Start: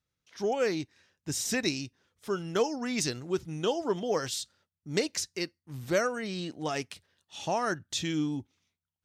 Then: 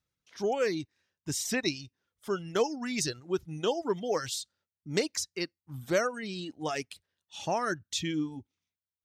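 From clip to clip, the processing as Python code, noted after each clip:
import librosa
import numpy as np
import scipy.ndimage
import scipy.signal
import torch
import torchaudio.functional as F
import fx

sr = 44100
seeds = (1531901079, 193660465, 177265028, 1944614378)

y = fx.dereverb_blind(x, sr, rt60_s=1.3)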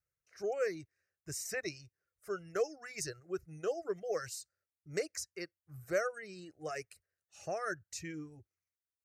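y = fx.fixed_phaser(x, sr, hz=920.0, stages=6)
y = y * librosa.db_to_amplitude(-4.5)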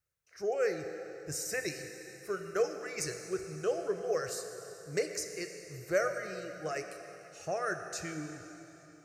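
y = fx.rev_plate(x, sr, seeds[0], rt60_s=3.4, hf_ratio=0.9, predelay_ms=0, drr_db=5.5)
y = y * librosa.db_to_amplitude(3.0)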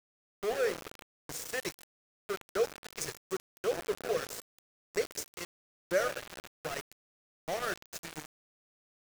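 y = np.where(np.abs(x) >= 10.0 ** (-33.5 / 20.0), x, 0.0)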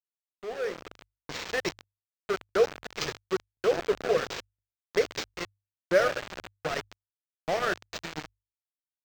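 y = fx.fade_in_head(x, sr, length_s=1.68)
y = fx.hum_notches(y, sr, base_hz=50, count=2)
y = np.interp(np.arange(len(y)), np.arange(len(y))[::4], y[::4])
y = y * librosa.db_to_amplitude(7.0)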